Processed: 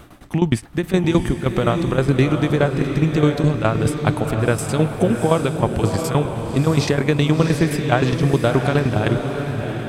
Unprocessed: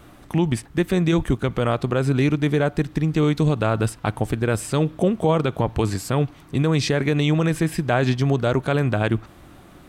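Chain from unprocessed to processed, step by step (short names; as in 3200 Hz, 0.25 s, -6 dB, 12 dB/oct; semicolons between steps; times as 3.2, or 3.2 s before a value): tremolo saw down 9.6 Hz, depth 85%; diffused feedback echo 0.704 s, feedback 45%, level -6 dB; gain +6 dB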